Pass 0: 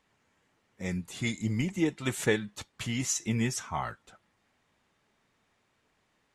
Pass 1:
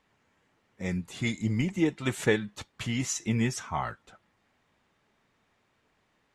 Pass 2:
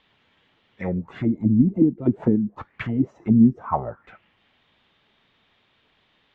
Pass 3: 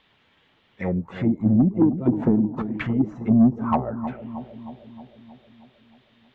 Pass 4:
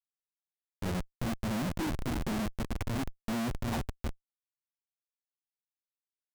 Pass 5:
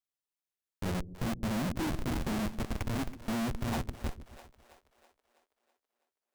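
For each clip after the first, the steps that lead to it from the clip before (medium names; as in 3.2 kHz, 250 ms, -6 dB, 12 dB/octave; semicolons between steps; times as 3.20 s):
treble shelf 6.1 kHz -7.5 dB; trim +2 dB
touch-sensitive low-pass 250–3500 Hz down, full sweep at -24 dBFS; trim +4 dB
saturation -11 dBFS, distortion -16 dB; bucket-brigade echo 313 ms, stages 2048, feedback 61%, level -11 dB; trim +1.5 dB
added noise white -38 dBFS; de-hum 84.59 Hz, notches 19; Schmitt trigger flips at -20.5 dBFS; trim -8 dB
two-band feedback delay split 410 Hz, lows 134 ms, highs 326 ms, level -13.5 dB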